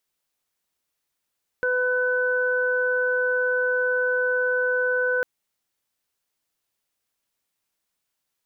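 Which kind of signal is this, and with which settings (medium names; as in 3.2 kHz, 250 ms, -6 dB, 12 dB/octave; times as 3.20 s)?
steady additive tone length 3.60 s, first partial 501 Hz, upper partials -15.5/0.5 dB, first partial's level -23 dB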